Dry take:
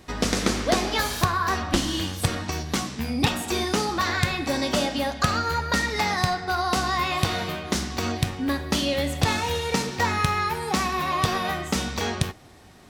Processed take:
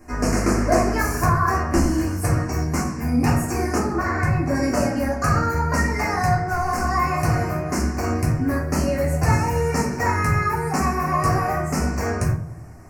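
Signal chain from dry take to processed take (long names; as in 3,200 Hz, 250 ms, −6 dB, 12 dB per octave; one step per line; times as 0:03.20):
0:03.78–0:04.55: high-shelf EQ 3,600 Hz −9 dB
0:06.40–0:06.88: hard clipping −23.5 dBFS, distortion −22 dB
Butterworth band-reject 3,500 Hz, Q 1
feedback echo with a low-pass in the loop 96 ms, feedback 60%, low-pass 1,000 Hz, level −13 dB
rectangular room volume 190 cubic metres, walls furnished, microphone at 3.2 metres
level −3.5 dB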